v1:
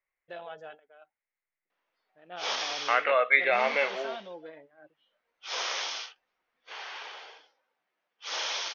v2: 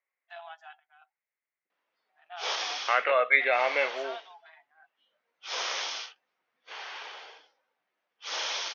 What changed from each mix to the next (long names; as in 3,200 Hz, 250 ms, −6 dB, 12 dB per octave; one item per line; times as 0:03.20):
first voice: add linear-phase brick-wall high-pass 660 Hz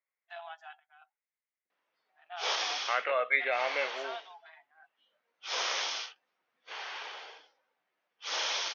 second voice −5.5 dB